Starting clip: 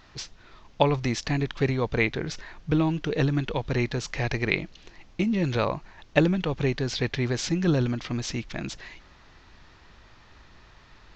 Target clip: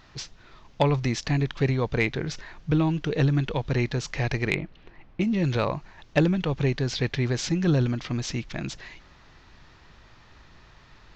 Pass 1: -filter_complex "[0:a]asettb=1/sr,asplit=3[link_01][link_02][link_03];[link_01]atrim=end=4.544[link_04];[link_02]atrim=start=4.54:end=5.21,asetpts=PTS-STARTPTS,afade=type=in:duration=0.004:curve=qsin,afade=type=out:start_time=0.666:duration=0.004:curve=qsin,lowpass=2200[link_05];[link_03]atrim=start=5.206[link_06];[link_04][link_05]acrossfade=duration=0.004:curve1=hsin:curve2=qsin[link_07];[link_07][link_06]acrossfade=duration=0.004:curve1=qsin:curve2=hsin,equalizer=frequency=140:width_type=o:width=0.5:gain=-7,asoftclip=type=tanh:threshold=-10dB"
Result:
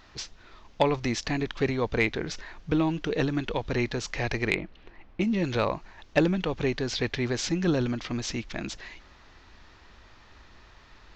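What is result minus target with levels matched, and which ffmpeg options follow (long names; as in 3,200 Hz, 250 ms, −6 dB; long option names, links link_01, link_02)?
125 Hz band −5.0 dB
-filter_complex "[0:a]asettb=1/sr,asplit=3[link_01][link_02][link_03];[link_01]atrim=end=4.544[link_04];[link_02]atrim=start=4.54:end=5.21,asetpts=PTS-STARTPTS,afade=type=in:duration=0.004:curve=qsin,afade=type=out:start_time=0.666:duration=0.004:curve=qsin,lowpass=2200[link_05];[link_03]atrim=start=5.206[link_06];[link_04][link_05]acrossfade=duration=0.004:curve1=hsin:curve2=qsin[link_07];[link_07][link_06]acrossfade=duration=0.004:curve1=qsin:curve2=hsin,equalizer=frequency=140:width_type=o:width=0.5:gain=4,asoftclip=type=tanh:threshold=-10dB"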